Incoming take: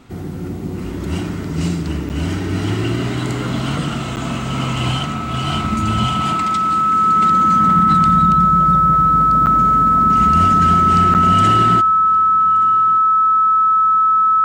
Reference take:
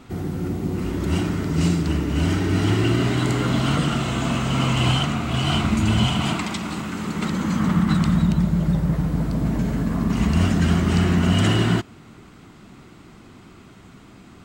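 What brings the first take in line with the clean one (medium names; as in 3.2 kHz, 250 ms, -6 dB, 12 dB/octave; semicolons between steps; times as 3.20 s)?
band-stop 1.3 kHz, Q 30; interpolate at 2.09/4.16/9.46/11.14 s, 8.9 ms; inverse comb 1174 ms -22 dB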